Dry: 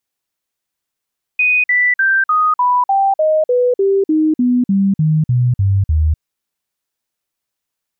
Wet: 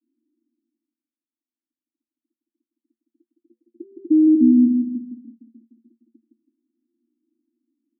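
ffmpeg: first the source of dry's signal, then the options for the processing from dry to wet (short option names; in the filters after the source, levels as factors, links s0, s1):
-f lavfi -i "aevalsrc='0.316*clip(min(mod(t,0.3),0.25-mod(t,0.3))/0.005,0,1)*sin(2*PI*2490*pow(2,-floor(t/0.3)/3)*mod(t,0.3))':d=4.8:s=44100"
-af "areverse,acompressor=mode=upward:threshold=0.0224:ratio=2.5,areverse,asuperpass=centerf=280:order=20:qfactor=2.2,aecho=1:1:163|326|489|652:0.562|0.197|0.0689|0.0241"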